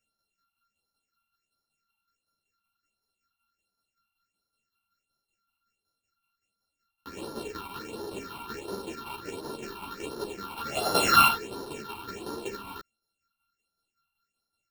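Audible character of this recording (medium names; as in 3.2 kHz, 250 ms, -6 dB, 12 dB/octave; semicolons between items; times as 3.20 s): a buzz of ramps at a fixed pitch in blocks of 32 samples; phasing stages 6, 1.4 Hz, lowest notch 460–2400 Hz; tremolo saw down 5.3 Hz, depth 55%; a shimmering, thickened sound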